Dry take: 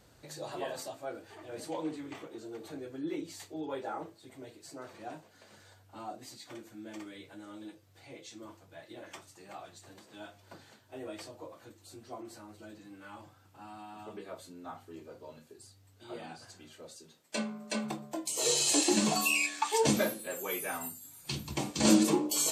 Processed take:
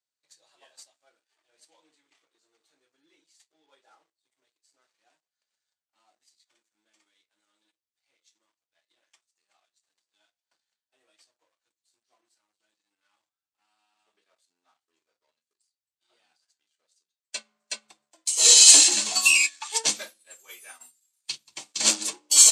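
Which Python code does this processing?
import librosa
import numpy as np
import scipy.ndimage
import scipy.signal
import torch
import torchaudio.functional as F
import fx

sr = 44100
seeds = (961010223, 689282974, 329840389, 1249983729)

y = fx.leveller(x, sr, passes=2)
y = fx.weighting(y, sr, curve='ITU-R 468')
y = fx.upward_expand(y, sr, threshold_db=-32.0, expansion=2.5)
y = F.gain(torch.from_numpy(y), 1.0).numpy()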